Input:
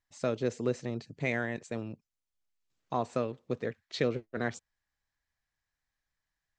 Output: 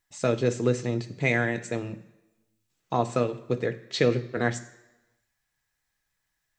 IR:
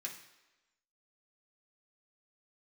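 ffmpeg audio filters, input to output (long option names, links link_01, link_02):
-filter_complex "[0:a]asplit=2[link_01][link_02];[1:a]atrim=start_sample=2205,lowshelf=frequency=260:gain=8,highshelf=frequency=6000:gain=11[link_03];[link_02][link_03]afir=irnorm=-1:irlink=0,volume=-3.5dB[link_04];[link_01][link_04]amix=inputs=2:normalize=0,volume=4.5dB"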